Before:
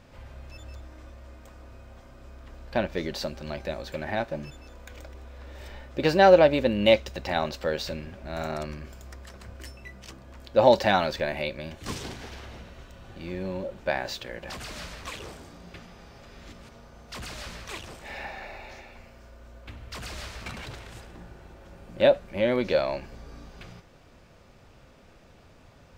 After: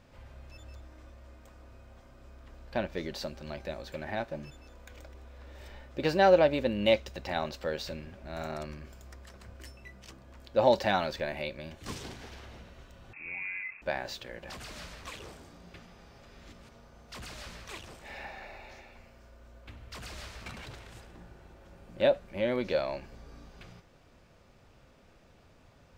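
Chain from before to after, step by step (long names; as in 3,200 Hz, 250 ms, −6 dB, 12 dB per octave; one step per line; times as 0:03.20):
0:13.13–0:13.82: voice inversion scrambler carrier 2,600 Hz
level −5.5 dB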